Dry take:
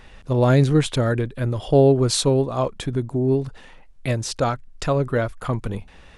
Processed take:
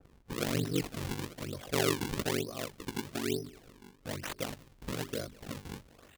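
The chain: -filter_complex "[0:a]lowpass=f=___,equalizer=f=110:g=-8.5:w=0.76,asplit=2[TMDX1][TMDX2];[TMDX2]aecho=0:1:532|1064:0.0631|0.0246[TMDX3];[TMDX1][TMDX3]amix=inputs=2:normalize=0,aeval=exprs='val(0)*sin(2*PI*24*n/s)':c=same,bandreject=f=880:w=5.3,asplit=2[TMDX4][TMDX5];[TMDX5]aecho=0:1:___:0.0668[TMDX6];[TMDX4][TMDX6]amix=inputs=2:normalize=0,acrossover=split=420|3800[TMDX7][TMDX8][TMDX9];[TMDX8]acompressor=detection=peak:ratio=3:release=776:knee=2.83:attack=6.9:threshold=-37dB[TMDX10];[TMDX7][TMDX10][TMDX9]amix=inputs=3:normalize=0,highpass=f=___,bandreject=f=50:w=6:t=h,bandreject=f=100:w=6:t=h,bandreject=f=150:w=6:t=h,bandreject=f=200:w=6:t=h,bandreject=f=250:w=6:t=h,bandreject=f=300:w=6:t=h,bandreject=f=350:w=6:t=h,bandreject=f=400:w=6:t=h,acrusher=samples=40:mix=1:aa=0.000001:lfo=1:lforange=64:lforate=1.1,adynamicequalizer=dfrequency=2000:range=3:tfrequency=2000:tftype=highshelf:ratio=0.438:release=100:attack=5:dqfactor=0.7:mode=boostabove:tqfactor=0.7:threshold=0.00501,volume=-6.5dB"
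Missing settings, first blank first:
7000, 192, 63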